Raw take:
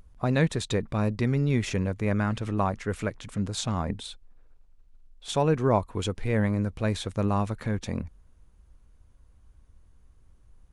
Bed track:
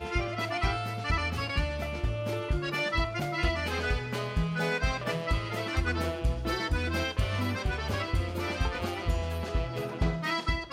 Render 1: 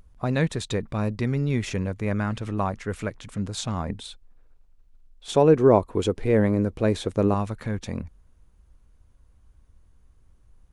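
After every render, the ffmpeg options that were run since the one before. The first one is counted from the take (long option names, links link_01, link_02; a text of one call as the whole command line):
ffmpeg -i in.wav -filter_complex "[0:a]asettb=1/sr,asplit=3[link_01][link_02][link_03];[link_01]atrim=end=5.294[link_04];[link_02]atrim=start=5.29:end=7.34,asetpts=PTS-STARTPTS,afade=type=in:duration=0.004:curve=qsin,afade=type=out:start_time=2.046:duration=0.004:curve=qsin,equalizer=frequency=390:width_type=o:width=1.5:gain=10[link_05];[link_03]atrim=start=7.336[link_06];[link_04][link_05]acrossfade=duration=0.004:curve1=hsin:curve2=qsin[link_07];[link_07][link_06]acrossfade=duration=0.004:curve1=qsin:curve2=hsin" out.wav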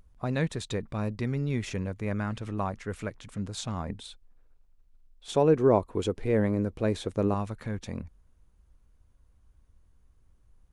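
ffmpeg -i in.wav -af "volume=-5dB" out.wav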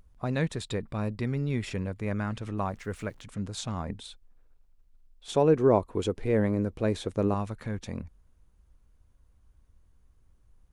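ffmpeg -i in.wav -filter_complex "[0:a]asettb=1/sr,asplit=3[link_01][link_02][link_03];[link_01]atrim=end=0.614[link_04];[link_02]atrim=start=0.61:end=2,asetpts=PTS-STARTPTS,afade=type=in:duration=0.004:curve=qsin,afade=type=out:start_time=1.386:duration=0.004:curve=qsin,bandreject=frequency=6200:width=6.2[link_05];[link_03]atrim=start=1.996[link_06];[link_04][link_05]acrossfade=duration=0.004:curve1=hsin:curve2=qsin[link_07];[link_07][link_06]acrossfade=duration=0.004:curve1=qsin:curve2=hsin,asettb=1/sr,asplit=3[link_08][link_09][link_10];[link_08]atrim=end=2.624[link_11];[link_09]atrim=start=2.62:end=3.22,asetpts=PTS-STARTPTS,afade=type=in:duration=0.004:curve=qsin,afade=type=out:start_time=0.596:duration=0.004:curve=qsin,aeval=exprs='val(0)*gte(abs(val(0)),0.00141)':channel_layout=same[link_12];[link_10]atrim=start=3.216[link_13];[link_11][link_12]acrossfade=duration=0.004:curve1=hsin:curve2=qsin[link_14];[link_14][link_13]acrossfade=duration=0.004:curve1=qsin:curve2=hsin" out.wav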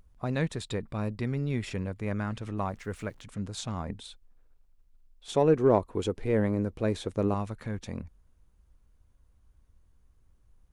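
ffmpeg -i in.wav -af "aeval=exprs='0.355*(cos(1*acos(clip(val(0)/0.355,-1,1)))-cos(1*PI/2))+0.0141*(cos(3*acos(clip(val(0)/0.355,-1,1)))-cos(3*PI/2))+0.00282*(cos(8*acos(clip(val(0)/0.355,-1,1)))-cos(8*PI/2))':channel_layout=same" out.wav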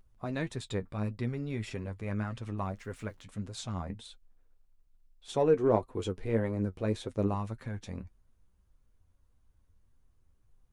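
ffmpeg -i in.wav -af "flanger=delay=7.6:depth=3.5:regen=39:speed=1.7:shape=sinusoidal" out.wav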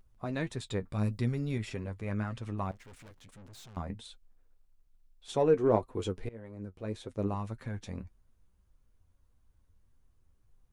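ffmpeg -i in.wav -filter_complex "[0:a]asettb=1/sr,asplit=3[link_01][link_02][link_03];[link_01]atrim=end=0.924[link_04];[link_02]atrim=start=0.92:end=1.58,asetpts=PTS-STARTPTS,afade=type=in:duration=0.004:curve=qsin,afade=type=out:start_time=0.656:duration=0.004:curve=qsin,bass=frequency=250:gain=4,treble=frequency=4000:gain=9[link_05];[link_03]atrim=start=1.576[link_06];[link_04][link_05]acrossfade=duration=0.004:curve1=hsin:curve2=qsin[link_07];[link_07][link_06]acrossfade=duration=0.004:curve1=qsin:curve2=hsin,asettb=1/sr,asplit=3[link_08][link_09][link_10];[link_08]atrim=end=2.714[link_11];[link_09]atrim=start=2.71:end=3.77,asetpts=PTS-STARTPTS,afade=type=in:duration=0.004:curve=qsin,afade=type=out:start_time=1.056:duration=0.004:curve=qsin,aeval=exprs='(tanh(316*val(0)+0.55)-tanh(0.55))/316':channel_layout=same[link_12];[link_10]atrim=start=3.766[link_13];[link_11][link_12]acrossfade=duration=0.004:curve1=hsin:curve2=qsin[link_14];[link_14][link_13]acrossfade=duration=0.004:curve1=qsin:curve2=hsin,asplit=2[link_15][link_16];[link_15]atrim=end=6.29,asetpts=PTS-STARTPTS,afade=type=out:start_time=6.286:duration=0.004:curve=hsin:silence=0.0668344[link_17];[link_16]atrim=start=6.29,asetpts=PTS-STARTPTS,afade=type=in:duration=1.37:silence=0.0668344[link_18];[link_17][link_18]concat=n=2:v=0:a=1" out.wav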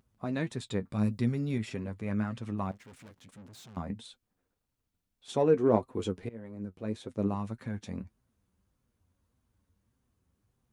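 ffmpeg -i in.wav -af "highpass=85,equalizer=frequency=220:width=1.9:gain=5.5" out.wav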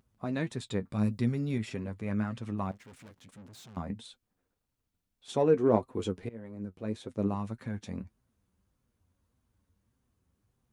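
ffmpeg -i in.wav -af anull out.wav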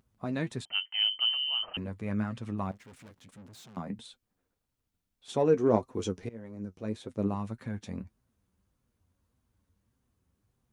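ffmpeg -i in.wav -filter_complex "[0:a]asettb=1/sr,asplit=3[link_01][link_02][link_03];[link_01]atrim=end=0.654[link_04];[link_02]atrim=start=0.65:end=1.77,asetpts=PTS-STARTPTS,afade=type=in:duration=0.004:curve=qsin,afade=type=out:start_time=1.116:duration=0.004:curve=qsin,lowpass=frequency=2700:width_type=q:width=0.5098,lowpass=frequency=2700:width_type=q:width=0.6013,lowpass=frequency=2700:width_type=q:width=0.9,lowpass=frequency=2700:width_type=q:width=2.563,afreqshift=-3200[link_05];[link_03]atrim=start=1.766[link_06];[link_04][link_05]acrossfade=duration=0.004:curve1=hsin:curve2=qsin[link_07];[link_07][link_06]acrossfade=duration=0.004:curve1=qsin:curve2=hsin,asettb=1/sr,asplit=3[link_08][link_09][link_10];[link_08]atrim=end=3.584[link_11];[link_09]atrim=start=3.58:end=3.99,asetpts=PTS-STARTPTS,afade=type=in:duration=0.004:curve=qsin,afade=type=out:start_time=0.406:duration=0.004:curve=qsin,highpass=frequency=120:width=0.5412,highpass=frequency=120:width=1.3066[link_12];[link_10]atrim=start=3.986[link_13];[link_11][link_12]acrossfade=duration=0.004:curve1=hsin:curve2=qsin[link_14];[link_14][link_13]acrossfade=duration=0.004:curve1=qsin:curve2=hsin,asettb=1/sr,asplit=3[link_15][link_16][link_17];[link_15]atrim=end=5.454[link_18];[link_16]atrim=start=5.45:end=6.89,asetpts=PTS-STARTPTS,afade=type=in:duration=0.004:curve=qsin,afade=type=out:start_time=1.436:duration=0.004:curve=qsin,equalizer=frequency=5900:width_type=o:width=0.43:gain=10.5[link_19];[link_17]atrim=start=6.886[link_20];[link_18][link_19]acrossfade=duration=0.004:curve1=hsin:curve2=qsin[link_21];[link_21][link_20]acrossfade=duration=0.004:curve1=qsin:curve2=hsin" out.wav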